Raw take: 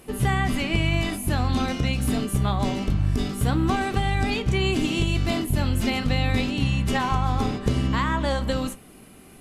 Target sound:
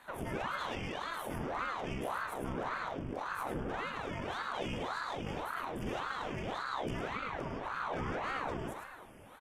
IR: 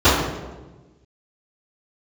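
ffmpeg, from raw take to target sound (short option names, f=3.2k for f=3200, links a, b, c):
-filter_complex "[0:a]bass=f=250:g=-6,treble=f=4k:g=-11,bandreject=f=95.93:t=h:w=4,bandreject=f=191.86:t=h:w=4,bandreject=f=287.79:t=h:w=4,bandreject=f=383.72:t=h:w=4,bandreject=f=479.65:t=h:w=4,bandreject=f=575.58:t=h:w=4,bandreject=f=671.51:t=h:w=4,bandreject=f=767.44:t=h:w=4,bandreject=f=863.37:t=h:w=4,bandreject=f=959.3:t=h:w=4,bandreject=f=1.05523k:t=h:w=4,bandreject=f=1.15116k:t=h:w=4,bandreject=f=1.24709k:t=h:w=4,bandreject=f=1.34302k:t=h:w=4,bandreject=f=1.43895k:t=h:w=4,bandreject=f=1.53488k:t=h:w=4,bandreject=f=1.63081k:t=h:w=4,bandreject=f=1.72674k:t=h:w=4,bandreject=f=1.82267k:t=h:w=4,bandreject=f=1.9186k:t=h:w=4,bandreject=f=2.01453k:t=h:w=4,bandreject=f=2.11046k:t=h:w=4,bandreject=f=2.20639k:t=h:w=4,bandreject=f=2.30232k:t=h:w=4,bandreject=f=2.39825k:t=h:w=4,bandreject=f=2.49418k:t=h:w=4,bandreject=f=2.59011k:t=h:w=4,bandreject=f=2.68604k:t=h:w=4,bandreject=f=2.78197k:t=h:w=4,bandreject=f=2.8779k:t=h:w=4,bandreject=f=2.97383k:t=h:w=4,bandreject=f=3.06976k:t=h:w=4,bandreject=f=3.16569k:t=h:w=4,bandreject=f=3.26162k:t=h:w=4,bandreject=f=3.35755k:t=h:w=4,acompressor=threshold=-30dB:ratio=6,aeval=exprs='(tanh(56.2*val(0)+0.6)-tanh(0.6))/56.2':c=same,asuperstop=centerf=4000:order=12:qfactor=2.9,asplit=2[a][b];[b]adelay=45,volume=-13dB[c];[a][c]amix=inputs=2:normalize=0,aecho=1:1:106:0.531,asplit=2[d][e];[1:a]atrim=start_sample=2205,asetrate=57330,aresample=44100,adelay=124[f];[e][f]afir=irnorm=-1:irlink=0,volume=-34.5dB[g];[d][g]amix=inputs=2:normalize=0,aeval=exprs='val(0)*sin(2*PI*730*n/s+730*0.85/1.8*sin(2*PI*1.8*n/s))':c=same"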